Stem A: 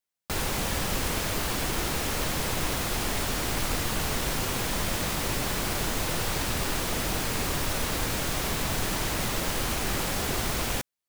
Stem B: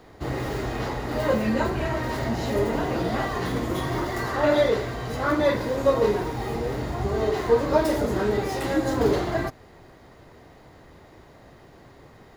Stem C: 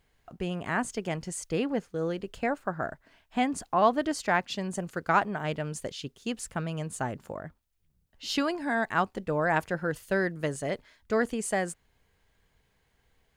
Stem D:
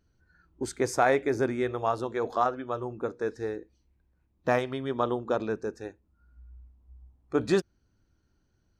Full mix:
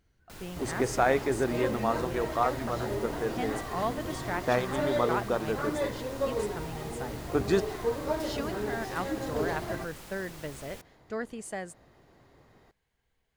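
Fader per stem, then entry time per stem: -18.5 dB, -10.0 dB, -8.5 dB, -1.5 dB; 0.00 s, 0.35 s, 0.00 s, 0.00 s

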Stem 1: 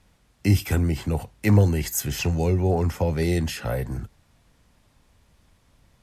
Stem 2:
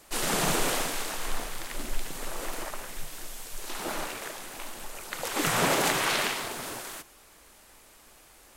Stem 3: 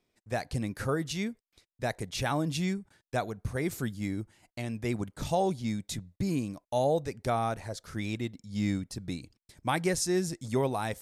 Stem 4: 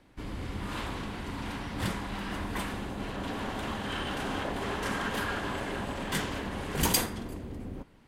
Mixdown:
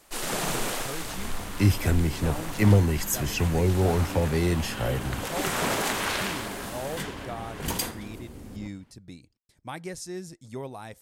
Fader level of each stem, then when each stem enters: -1.5 dB, -2.5 dB, -8.5 dB, -3.5 dB; 1.15 s, 0.00 s, 0.00 s, 0.85 s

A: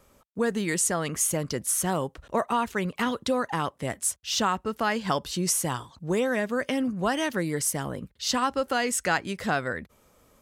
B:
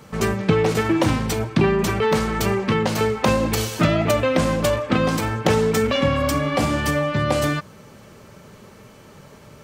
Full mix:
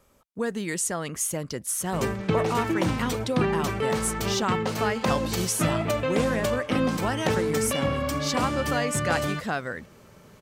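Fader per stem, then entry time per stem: -2.5 dB, -7.0 dB; 0.00 s, 1.80 s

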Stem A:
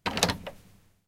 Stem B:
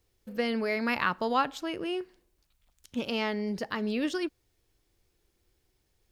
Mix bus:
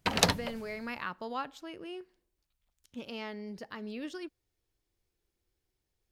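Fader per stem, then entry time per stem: 0.0 dB, -10.0 dB; 0.00 s, 0.00 s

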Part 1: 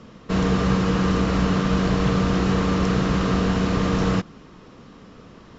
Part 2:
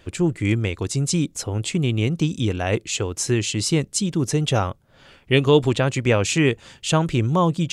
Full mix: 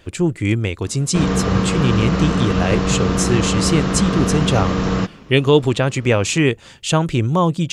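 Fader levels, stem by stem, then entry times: +2.0 dB, +2.5 dB; 0.85 s, 0.00 s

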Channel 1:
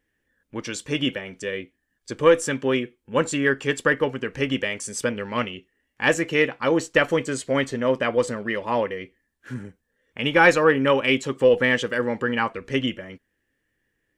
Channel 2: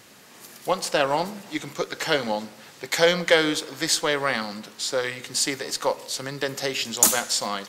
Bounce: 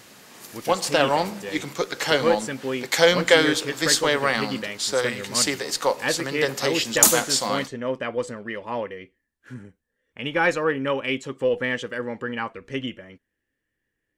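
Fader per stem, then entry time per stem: -5.5 dB, +2.0 dB; 0.00 s, 0.00 s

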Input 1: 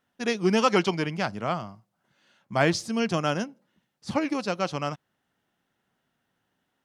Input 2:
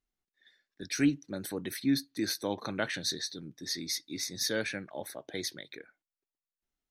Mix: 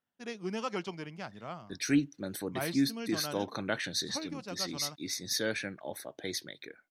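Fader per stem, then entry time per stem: -14.0 dB, -0.5 dB; 0.00 s, 0.90 s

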